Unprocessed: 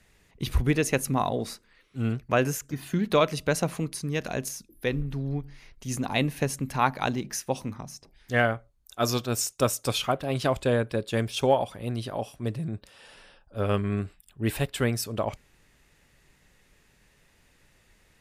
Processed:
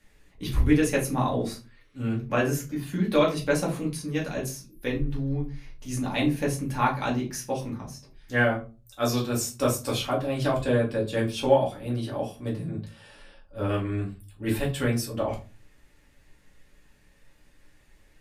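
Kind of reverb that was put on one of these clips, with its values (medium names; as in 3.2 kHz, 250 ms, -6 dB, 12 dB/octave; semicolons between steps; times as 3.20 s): simulated room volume 130 m³, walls furnished, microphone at 2.3 m; trim -6 dB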